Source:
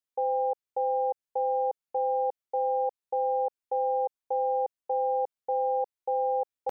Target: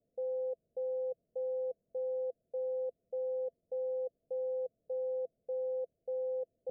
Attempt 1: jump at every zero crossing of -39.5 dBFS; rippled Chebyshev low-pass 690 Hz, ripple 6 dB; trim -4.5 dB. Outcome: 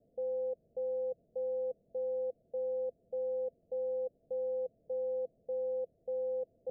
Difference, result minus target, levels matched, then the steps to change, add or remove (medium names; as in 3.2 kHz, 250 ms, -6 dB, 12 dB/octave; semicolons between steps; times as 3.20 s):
jump at every zero crossing: distortion +11 dB
change: jump at every zero crossing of -51 dBFS